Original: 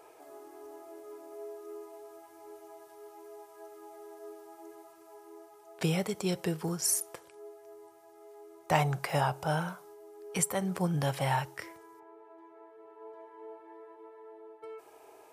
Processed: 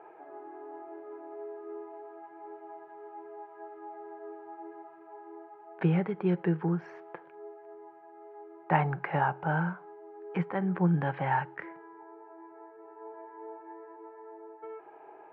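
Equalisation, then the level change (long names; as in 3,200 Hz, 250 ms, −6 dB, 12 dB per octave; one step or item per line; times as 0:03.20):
dynamic equaliser 710 Hz, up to −6 dB, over −47 dBFS, Q 2
high-frequency loss of the air 150 metres
loudspeaker in its box 160–2,400 Hz, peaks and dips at 170 Hz +9 dB, 350 Hz +6 dB, 830 Hz +9 dB, 1,600 Hz +7 dB
0.0 dB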